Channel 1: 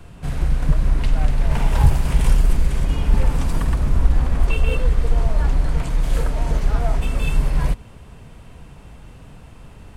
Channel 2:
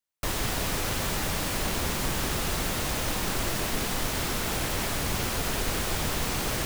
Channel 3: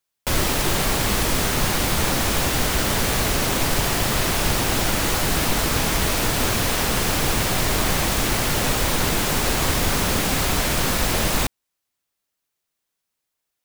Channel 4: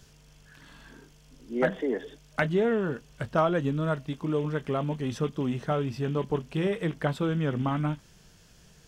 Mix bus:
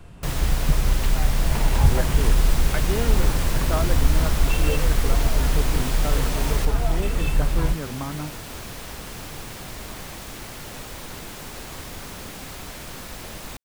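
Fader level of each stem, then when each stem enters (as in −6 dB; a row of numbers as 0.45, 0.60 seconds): −3.0, −2.0, −15.5, −4.0 decibels; 0.00, 0.00, 2.10, 0.35 seconds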